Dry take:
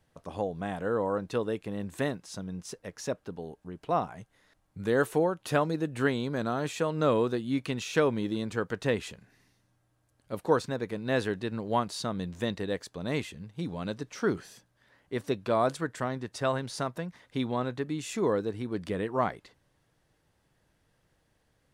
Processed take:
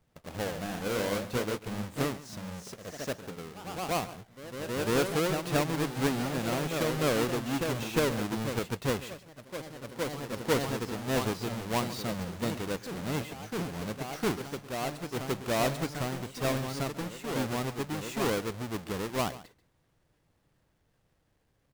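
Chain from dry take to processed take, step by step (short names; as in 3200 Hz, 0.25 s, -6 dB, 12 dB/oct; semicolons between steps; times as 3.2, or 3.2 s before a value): half-waves squared off; on a send: echo 0.138 s -17 dB; on the sum: echoes that change speed 92 ms, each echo +1 st, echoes 3, each echo -6 dB; gain -6.5 dB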